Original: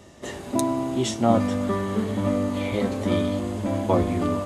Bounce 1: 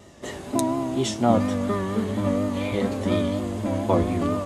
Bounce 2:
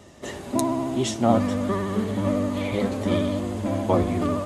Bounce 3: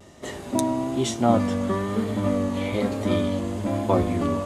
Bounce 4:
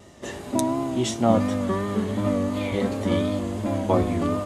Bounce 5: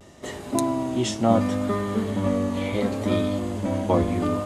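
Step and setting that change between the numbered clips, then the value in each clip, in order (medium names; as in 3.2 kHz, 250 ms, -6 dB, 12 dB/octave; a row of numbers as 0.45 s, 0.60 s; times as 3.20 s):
vibrato, rate: 4.2 Hz, 14 Hz, 1.1 Hz, 2.8 Hz, 0.72 Hz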